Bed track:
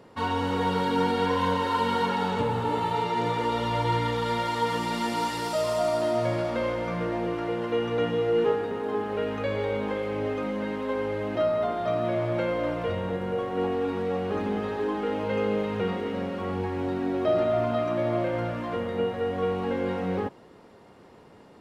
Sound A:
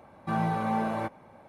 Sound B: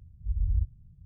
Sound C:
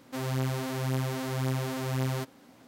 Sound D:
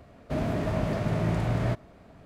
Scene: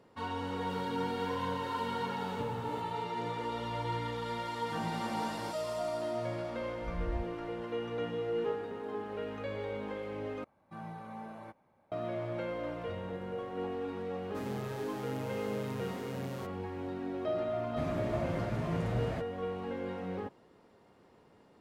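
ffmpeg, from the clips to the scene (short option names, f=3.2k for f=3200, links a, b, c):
-filter_complex "[3:a]asplit=2[a][b];[1:a]asplit=2[c][d];[0:a]volume=-10dB[e];[a]alimiter=level_in=9dB:limit=-24dB:level=0:latency=1:release=71,volume=-9dB[f];[2:a]asubboost=boost=9.5:cutoff=67[g];[4:a]asplit=2[h][i];[i]adelay=8.2,afreqshift=2.2[j];[h][j]amix=inputs=2:normalize=1[k];[e]asplit=2[l][m];[l]atrim=end=10.444[n];[d]atrim=end=1.48,asetpts=PTS-STARTPTS,volume=-16.5dB[o];[m]atrim=start=11.916[p];[f]atrim=end=2.67,asetpts=PTS-STARTPTS,volume=-12dB,afade=t=in:d=0.004:c=hsin,afade=t=out:st=2.666:d=0.004:c=hsin,adelay=570[q];[c]atrim=end=1.48,asetpts=PTS-STARTPTS,volume=-10.5dB,afade=t=in:d=0.004:c=hsin,afade=t=out:st=1.476:d=0.004:c=hsin,adelay=4440[r];[g]atrim=end=1.05,asetpts=PTS-STARTPTS,volume=-14dB,afade=t=in:d=0.004:c=hsin,afade=t=out:st=1.046:d=0.004:c=hsin,adelay=290178S[s];[b]atrim=end=2.67,asetpts=PTS-STARTPTS,volume=-12.5dB,afade=t=in:d=0.004:c=hsin,afade=t=out:st=2.666:d=0.004:c=hsin,adelay=14220[t];[k]atrim=end=2.25,asetpts=PTS-STARTPTS,volume=-5dB,afade=t=in:d=0.004:c=hsin,afade=t=out:st=2.246:d=0.004:c=hsin,adelay=17460[u];[n][o]acrossfade=d=0.004:c1=hsin:c2=hsin[v];[v][p]acrossfade=d=0.004:c1=hsin:c2=hsin[w];[w][q][r][s][t][u]amix=inputs=6:normalize=0"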